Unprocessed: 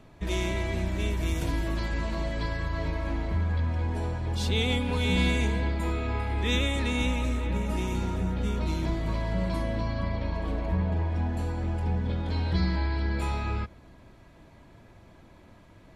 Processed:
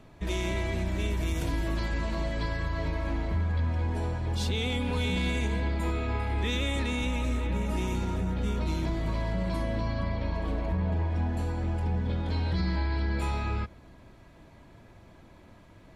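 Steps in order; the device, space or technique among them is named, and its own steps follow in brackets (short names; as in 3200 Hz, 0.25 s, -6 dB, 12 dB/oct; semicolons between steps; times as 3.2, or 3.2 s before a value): soft clipper into limiter (soft clip -14.5 dBFS, distortion -29 dB; limiter -21 dBFS, peak gain reduction 5 dB)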